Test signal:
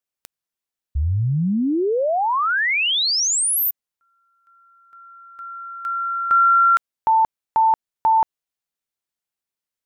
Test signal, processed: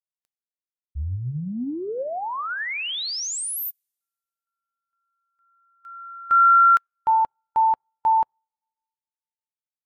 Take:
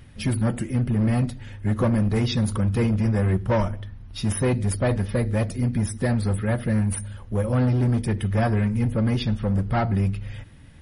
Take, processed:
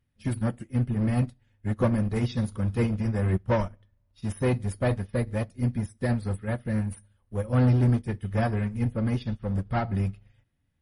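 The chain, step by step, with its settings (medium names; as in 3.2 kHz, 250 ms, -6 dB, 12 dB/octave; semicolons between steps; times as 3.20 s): two-slope reverb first 0.43 s, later 2.3 s, from -17 dB, DRR 17 dB; upward expansion 2.5:1, over -36 dBFS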